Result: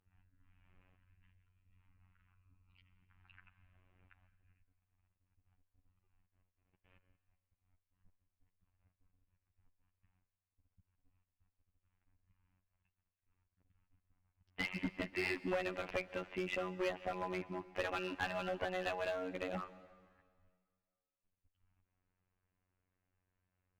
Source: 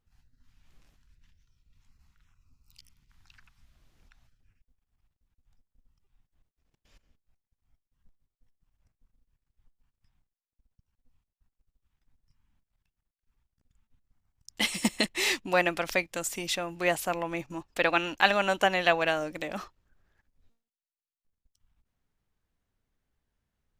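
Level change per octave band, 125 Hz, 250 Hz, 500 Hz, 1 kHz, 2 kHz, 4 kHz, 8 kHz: -7.5 dB, -9.0 dB, -9.5 dB, -13.5 dB, -13.0 dB, -17.0 dB, -24.0 dB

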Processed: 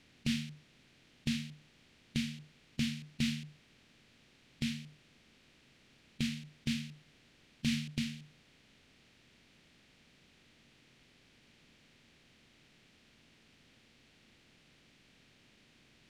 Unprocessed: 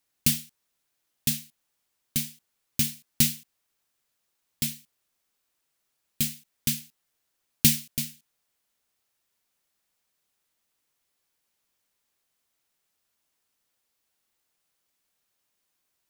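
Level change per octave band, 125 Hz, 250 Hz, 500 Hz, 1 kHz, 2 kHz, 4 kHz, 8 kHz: -5.5 dB, -1.5 dB, -5.0 dB, no reading, -3.5 dB, -8.0 dB, -20.0 dB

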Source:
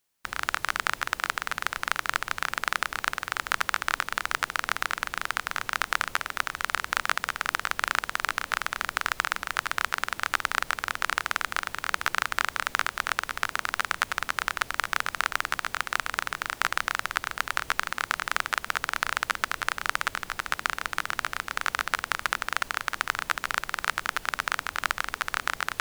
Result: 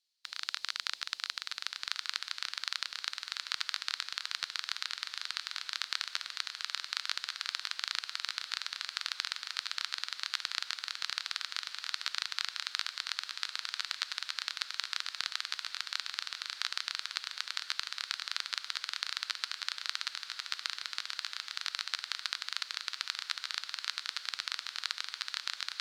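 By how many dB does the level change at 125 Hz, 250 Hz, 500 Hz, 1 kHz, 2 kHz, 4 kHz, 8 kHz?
under -35 dB, under -30 dB, under -20 dB, -17.0 dB, -12.5 dB, +1.0 dB, -7.0 dB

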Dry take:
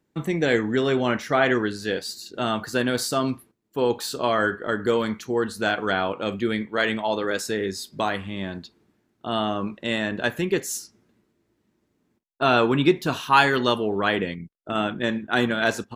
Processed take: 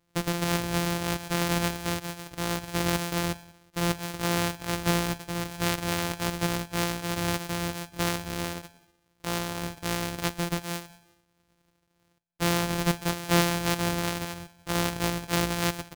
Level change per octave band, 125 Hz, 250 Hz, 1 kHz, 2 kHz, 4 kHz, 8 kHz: +2.0 dB, -4.5 dB, -6.5 dB, -7.0 dB, -2.0 dB, +3.0 dB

